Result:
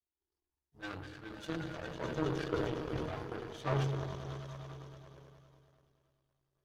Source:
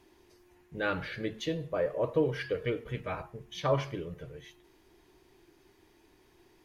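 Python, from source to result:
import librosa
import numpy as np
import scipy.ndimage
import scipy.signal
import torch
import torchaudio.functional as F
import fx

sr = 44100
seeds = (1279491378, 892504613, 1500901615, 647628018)

p1 = fx.spec_quant(x, sr, step_db=15)
p2 = 10.0 ** (-33.5 / 20.0) * np.tanh(p1 / 10.0 ** (-33.5 / 20.0))
p3 = p1 + (p2 * 10.0 ** (-5.0 / 20.0))
p4 = fx.peak_eq(p3, sr, hz=2200.0, db=-12.5, octaves=0.41)
p5 = p4 + fx.echo_swell(p4, sr, ms=103, loudest=5, wet_db=-11, dry=0)
p6 = fx.cheby_harmonics(p5, sr, harmonics=(5,), levels_db=(-28,), full_scale_db=-12.0)
p7 = fx.chorus_voices(p6, sr, voices=4, hz=0.36, base_ms=14, depth_ms=1.7, mix_pct=65)
p8 = fx.power_curve(p7, sr, exponent=2.0)
p9 = fx.peak_eq(p8, sr, hz=530.0, db=-6.0, octaves=0.52)
p10 = fx.echo_wet_lowpass(p9, sr, ms=73, feedback_pct=64, hz=450.0, wet_db=-7.5)
y = fx.sustainer(p10, sr, db_per_s=33.0)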